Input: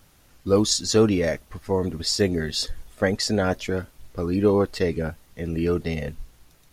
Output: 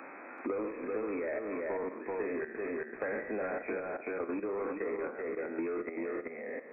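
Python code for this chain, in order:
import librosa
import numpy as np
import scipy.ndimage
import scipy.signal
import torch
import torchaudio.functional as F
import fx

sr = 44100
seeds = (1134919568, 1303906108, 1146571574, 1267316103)

y = fx.spec_trails(x, sr, decay_s=0.69)
y = scipy.signal.sosfilt(scipy.signal.butter(6, 260.0, 'highpass', fs=sr, output='sos'), y)
y = fx.hum_notches(y, sr, base_hz=60, count=8)
y = fx.level_steps(y, sr, step_db=14)
y = 10.0 ** (-26.0 / 20.0) * np.tanh(y / 10.0 ** (-26.0 / 20.0))
y = fx.brickwall_lowpass(y, sr, high_hz=2600.0)
y = y + 10.0 ** (-5.0 / 20.0) * np.pad(y, (int(384 * sr / 1000.0), 0))[:len(y)]
y = fx.band_squash(y, sr, depth_pct=100)
y = y * librosa.db_to_amplitude(-4.0)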